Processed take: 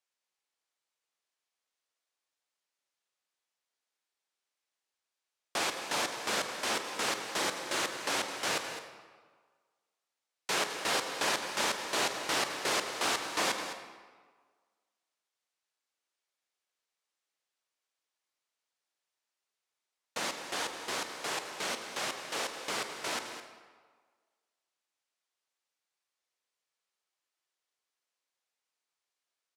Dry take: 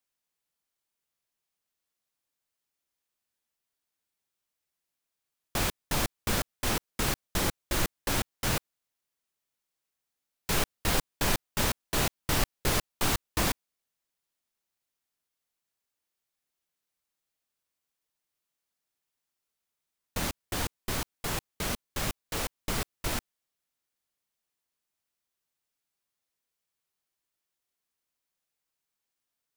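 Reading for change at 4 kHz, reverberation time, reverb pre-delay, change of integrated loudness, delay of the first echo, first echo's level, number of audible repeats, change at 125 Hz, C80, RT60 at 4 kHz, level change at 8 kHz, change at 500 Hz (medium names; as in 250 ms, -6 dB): +0.5 dB, 1.6 s, 35 ms, -2.0 dB, 211 ms, -11.5 dB, 1, -19.5 dB, 7.0 dB, 1.1 s, -2.0 dB, -0.5 dB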